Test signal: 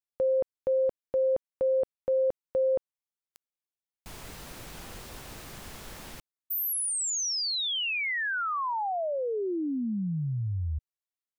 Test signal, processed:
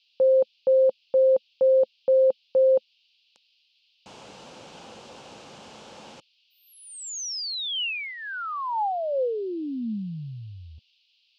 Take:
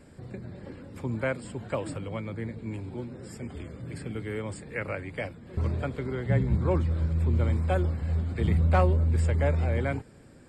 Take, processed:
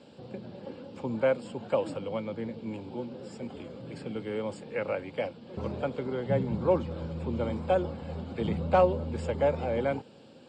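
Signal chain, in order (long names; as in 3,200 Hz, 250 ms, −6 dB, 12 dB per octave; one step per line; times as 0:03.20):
noise in a band 2,500–4,900 Hz −67 dBFS
loudspeaker in its box 160–6,900 Hz, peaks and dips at 220 Hz +4 dB, 520 Hz +8 dB, 840 Hz +7 dB, 1,900 Hz −8 dB, 2,900 Hz +5 dB
level −1.5 dB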